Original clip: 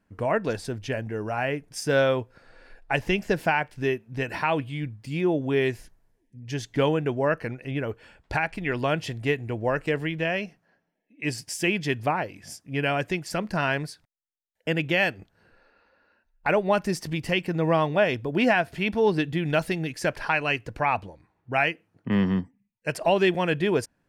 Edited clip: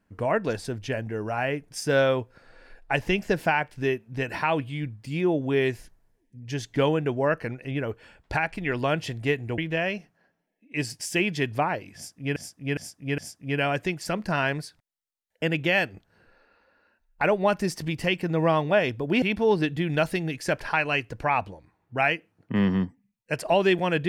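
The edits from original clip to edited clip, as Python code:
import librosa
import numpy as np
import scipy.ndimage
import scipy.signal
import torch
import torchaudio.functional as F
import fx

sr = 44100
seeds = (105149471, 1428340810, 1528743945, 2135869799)

y = fx.edit(x, sr, fx.cut(start_s=9.58, length_s=0.48),
    fx.repeat(start_s=12.43, length_s=0.41, count=4),
    fx.cut(start_s=18.47, length_s=0.31), tone=tone)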